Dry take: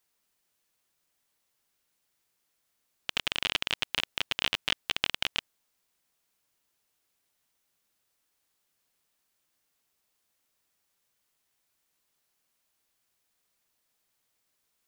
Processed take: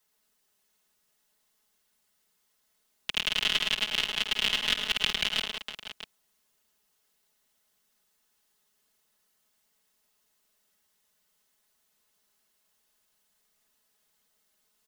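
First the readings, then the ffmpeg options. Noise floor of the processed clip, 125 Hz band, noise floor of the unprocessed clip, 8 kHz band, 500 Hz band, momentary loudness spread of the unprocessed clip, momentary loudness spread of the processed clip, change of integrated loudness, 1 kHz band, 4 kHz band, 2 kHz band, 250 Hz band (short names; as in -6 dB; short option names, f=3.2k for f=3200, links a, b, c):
-74 dBFS, +0.5 dB, -78 dBFS, +4.0 dB, +1.0 dB, 5 LU, 15 LU, +3.0 dB, 0.0 dB, +4.0 dB, +2.5 dB, +2.5 dB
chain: -filter_complex "[0:a]aecho=1:1:51|105|110|184|468|644:0.266|0.15|0.355|0.299|0.119|0.2,acrossover=split=250|1600|4300[a][b][c][d];[b]alimiter=level_in=6dB:limit=-24dB:level=0:latency=1,volume=-6dB[e];[a][e][c][d]amix=inputs=4:normalize=0,bandreject=f=2.4k:w=15,aecho=1:1:4.7:0.93"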